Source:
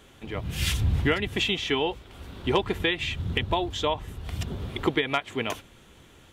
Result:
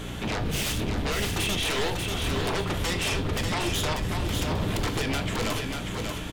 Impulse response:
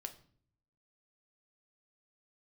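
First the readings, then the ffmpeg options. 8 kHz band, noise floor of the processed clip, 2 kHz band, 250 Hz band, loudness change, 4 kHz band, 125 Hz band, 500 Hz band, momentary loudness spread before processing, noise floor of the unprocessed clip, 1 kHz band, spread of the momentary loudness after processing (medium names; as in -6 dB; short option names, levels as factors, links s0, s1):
+8.5 dB, -34 dBFS, -0.5 dB, +1.0 dB, 0.0 dB, +0.5 dB, +1.5 dB, -2.0 dB, 10 LU, -53 dBFS, -0.5 dB, 4 LU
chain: -filter_complex "[0:a]acompressor=threshold=0.0224:ratio=12,aeval=exprs='val(0)+0.00316*(sin(2*PI*60*n/s)+sin(2*PI*2*60*n/s)/2+sin(2*PI*3*60*n/s)/3+sin(2*PI*4*60*n/s)/4+sin(2*PI*5*60*n/s)/5)':c=same,aeval=exprs='0.0794*sin(PI/2*5.62*val(0)/0.0794)':c=same,aecho=1:1:590|1180|1770|2360:0.562|0.152|0.041|0.0111[s0];[1:a]atrim=start_sample=2205,asetrate=40572,aresample=44100[s1];[s0][s1]afir=irnorm=-1:irlink=0"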